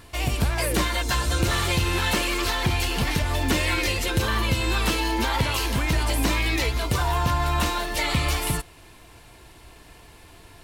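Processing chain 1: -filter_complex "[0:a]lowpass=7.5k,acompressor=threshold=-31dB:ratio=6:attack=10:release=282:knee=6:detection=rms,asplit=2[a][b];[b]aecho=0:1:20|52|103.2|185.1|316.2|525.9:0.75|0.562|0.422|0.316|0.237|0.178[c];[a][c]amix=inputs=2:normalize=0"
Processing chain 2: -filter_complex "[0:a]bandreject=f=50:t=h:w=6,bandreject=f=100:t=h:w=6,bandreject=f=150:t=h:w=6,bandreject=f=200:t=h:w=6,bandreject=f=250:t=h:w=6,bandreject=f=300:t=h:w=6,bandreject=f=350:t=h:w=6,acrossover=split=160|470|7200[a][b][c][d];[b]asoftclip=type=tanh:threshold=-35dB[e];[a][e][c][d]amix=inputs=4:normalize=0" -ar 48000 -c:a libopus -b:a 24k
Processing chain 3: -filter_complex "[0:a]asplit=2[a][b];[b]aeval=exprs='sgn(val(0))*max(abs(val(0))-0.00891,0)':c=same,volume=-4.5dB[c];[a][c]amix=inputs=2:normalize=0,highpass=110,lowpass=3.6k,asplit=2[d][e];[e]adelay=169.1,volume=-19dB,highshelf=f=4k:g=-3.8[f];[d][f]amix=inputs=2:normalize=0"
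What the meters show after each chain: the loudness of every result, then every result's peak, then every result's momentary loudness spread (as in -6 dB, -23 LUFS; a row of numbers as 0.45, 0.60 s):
-31.0, -24.5, -22.5 LUFS; -18.5, -10.0, -7.0 dBFS; 15, 2, 3 LU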